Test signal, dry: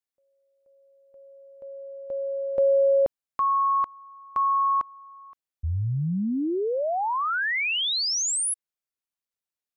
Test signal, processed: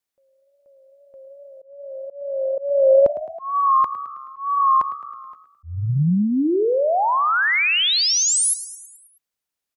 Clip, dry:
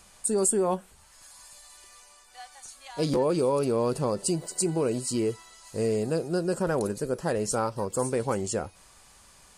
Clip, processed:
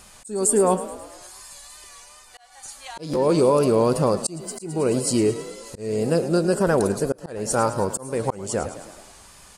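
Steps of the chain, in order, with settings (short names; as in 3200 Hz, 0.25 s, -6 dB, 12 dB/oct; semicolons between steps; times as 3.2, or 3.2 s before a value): wow and flutter 54 cents; frequency-shifting echo 0.107 s, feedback 58%, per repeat +34 Hz, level -14 dB; auto swell 0.339 s; gain +7 dB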